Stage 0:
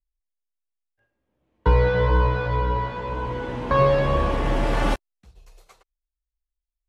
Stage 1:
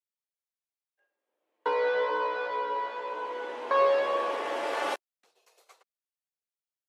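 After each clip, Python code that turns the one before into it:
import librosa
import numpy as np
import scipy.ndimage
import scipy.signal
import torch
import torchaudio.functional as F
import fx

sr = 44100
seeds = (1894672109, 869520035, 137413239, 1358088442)

y = scipy.signal.sosfilt(scipy.signal.butter(4, 410.0, 'highpass', fs=sr, output='sos'), x)
y = F.gain(torch.from_numpy(y), -4.0).numpy()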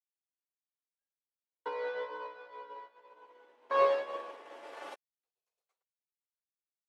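y = fx.upward_expand(x, sr, threshold_db=-40.0, expansion=2.5)
y = F.gain(torch.from_numpy(y), -1.5).numpy()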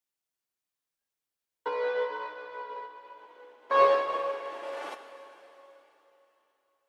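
y = fx.rev_plate(x, sr, seeds[0], rt60_s=3.4, hf_ratio=1.0, predelay_ms=0, drr_db=7.0)
y = F.gain(torch.from_numpy(y), 5.5).numpy()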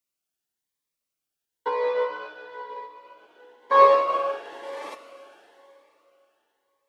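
y = fx.dynamic_eq(x, sr, hz=1000.0, q=0.85, threshold_db=-37.0, ratio=4.0, max_db=6)
y = fx.hum_notches(y, sr, base_hz=60, count=2)
y = fx.notch_cascade(y, sr, direction='rising', hz=1.0)
y = F.gain(torch.from_numpy(y), 3.5).numpy()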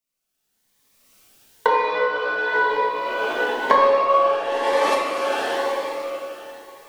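y = fx.recorder_agc(x, sr, target_db=-11.0, rise_db_per_s=26.0, max_gain_db=30)
y = fx.room_shoebox(y, sr, seeds[1], volume_m3=350.0, walls='mixed', distance_m=1.5)
y = F.gain(torch.from_numpy(y), -2.5).numpy()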